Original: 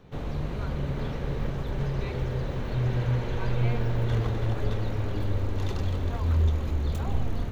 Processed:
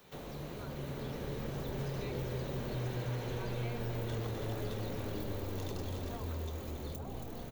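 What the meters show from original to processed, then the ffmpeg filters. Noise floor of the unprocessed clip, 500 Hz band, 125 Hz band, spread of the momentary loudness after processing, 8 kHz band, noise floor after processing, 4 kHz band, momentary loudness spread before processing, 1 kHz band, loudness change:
-32 dBFS, -5.5 dB, -12.0 dB, 5 LU, n/a, -44 dBFS, -4.5 dB, 6 LU, -7.5 dB, -10.0 dB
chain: -filter_complex "[0:a]aemphasis=mode=production:type=riaa,dynaudnorm=f=260:g=11:m=14dB,asplit=2[a][b];[b]aecho=0:1:275:0.282[c];[a][c]amix=inputs=2:normalize=0,flanger=delay=5.1:depth=4.1:regen=-77:speed=0.39:shape=sinusoidal,acrossover=split=330|750[d][e][f];[d]acompressor=threshold=-40dB:ratio=4[g];[e]acompressor=threshold=-50dB:ratio=4[h];[f]acompressor=threshold=-55dB:ratio=4[i];[g][h][i]amix=inputs=3:normalize=0,volume=2dB"

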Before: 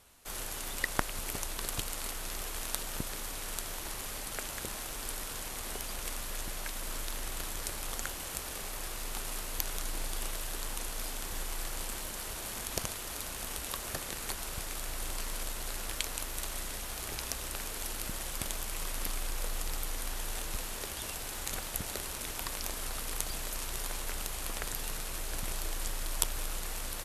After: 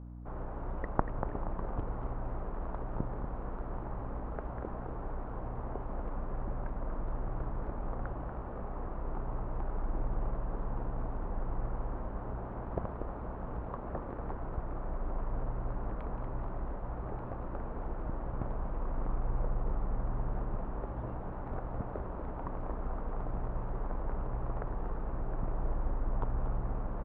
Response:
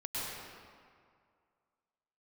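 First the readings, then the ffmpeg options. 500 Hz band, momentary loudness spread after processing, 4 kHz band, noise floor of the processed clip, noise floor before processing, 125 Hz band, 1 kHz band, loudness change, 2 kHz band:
+4.0 dB, 4 LU, under -35 dB, -41 dBFS, -41 dBFS, +7.5 dB, +2.0 dB, -3.0 dB, -12.0 dB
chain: -filter_complex "[0:a]lowpass=f=1.1k:w=0.5412,lowpass=f=1.1k:w=1.3066,asplit=6[a][b][c][d][e][f];[b]adelay=237,afreqshift=-73,volume=-6.5dB[g];[c]adelay=474,afreqshift=-146,volume=-13.8dB[h];[d]adelay=711,afreqshift=-219,volume=-21.2dB[i];[e]adelay=948,afreqshift=-292,volume=-28.5dB[j];[f]adelay=1185,afreqshift=-365,volume=-35.8dB[k];[a][g][h][i][j][k]amix=inputs=6:normalize=0,aeval=exprs='val(0)+0.00447*(sin(2*PI*60*n/s)+sin(2*PI*2*60*n/s)/2+sin(2*PI*3*60*n/s)/3+sin(2*PI*4*60*n/s)/4+sin(2*PI*5*60*n/s)/5)':c=same,volume=3dB"

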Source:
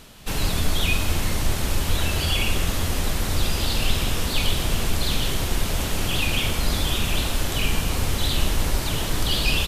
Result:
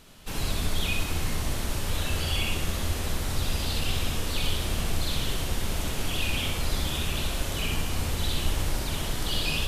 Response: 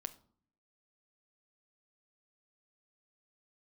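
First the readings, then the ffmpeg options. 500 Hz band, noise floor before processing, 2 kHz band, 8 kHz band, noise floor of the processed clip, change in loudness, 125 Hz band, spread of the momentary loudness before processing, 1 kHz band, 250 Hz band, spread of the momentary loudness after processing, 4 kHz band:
-5.0 dB, -27 dBFS, -5.5 dB, -5.5 dB, -32 dBFS, -5.5 dB, -5.0 dB, 3 LU, -5.5 dB, -5.5 dB, 3 LU, -5.5 dB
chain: -filter_complex "[0:a]asplit=2[a][b];[1:a]atrim=start_sample=2205,asetrate=23814,aresample=44100,adelay=63[c];[b][c]afir=irnorm=-1:irlink=0,volume=-2.5dB[d];[a][d]amix=inputs=2:normalize=0,volume=-7.5dB"

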